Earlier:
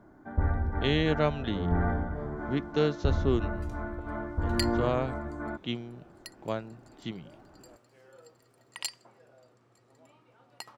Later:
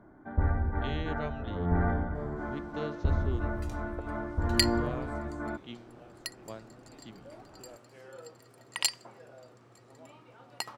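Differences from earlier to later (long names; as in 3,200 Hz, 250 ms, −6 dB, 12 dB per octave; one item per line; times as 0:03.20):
speech −11.5 dB
second sound +7.0 dB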